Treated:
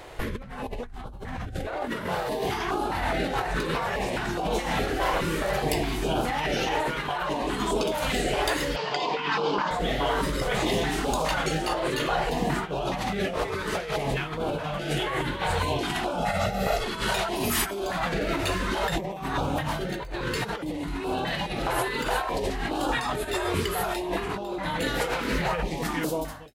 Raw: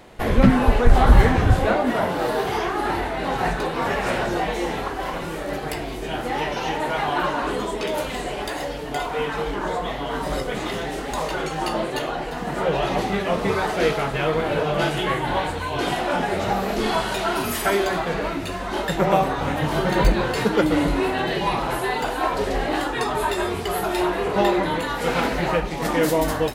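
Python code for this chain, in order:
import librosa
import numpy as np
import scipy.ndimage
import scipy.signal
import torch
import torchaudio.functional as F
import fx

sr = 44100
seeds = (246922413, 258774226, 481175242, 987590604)

y = fx.fade_out_tail(x, sr, length_s=1.56)
y = fx.cabinet(y, sr, low_hz=160.0, low_slope=24, high_hz=5900.0, hz=(260.0, 690.0, 1000.0, 2800.0, 4800.0), db=(-5, -4, 6, 4, 8), at=(8.76, 9.71))
y = fx.over_compress(y, sr, threshold_db=-27.0, ratio=-1.0)
y = fx.comb(y, sr, ms=1.5, depth=0.81, at=(16.18, 16.84))
y = fx.filter_held_notch(y, sr, hz=4.8, low_hz=210.0, high_hz=1900.0)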